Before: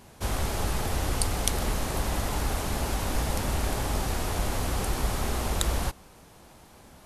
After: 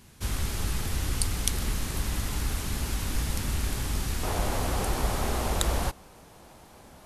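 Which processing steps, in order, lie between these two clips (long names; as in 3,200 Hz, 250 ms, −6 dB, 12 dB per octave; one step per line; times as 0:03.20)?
parametric band 660 Hz −11.5 dB 1.6 octaves, from 0:04.23 +2.5 dB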